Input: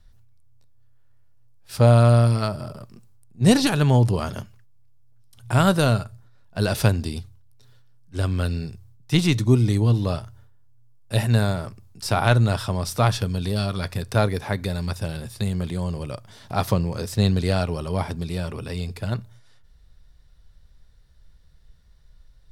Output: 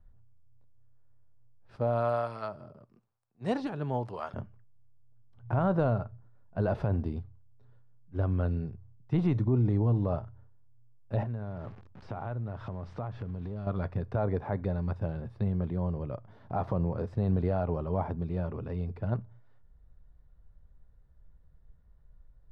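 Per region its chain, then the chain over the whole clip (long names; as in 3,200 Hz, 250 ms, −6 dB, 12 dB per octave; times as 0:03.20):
0:01.76–0:04.34: spectral tilt +4 dB per octave + two-band tremolo in antiphase 1 Hz, crossover 500 Hz
0:11.23–0:13.67: spike at every zero crossing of −18 dBFS + high-frequency loss of the air 130 metres + downward compressor 4 to 1, threshold −29 dBFS
whole clip: low-pass filter 1,100 Hz 12 dB per octave; dynamic equaliser 750 Hz, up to +5 dB, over −34 dBFS, Q 1.1; brickwall limiter −13.5 dBFS; level −4.5 dB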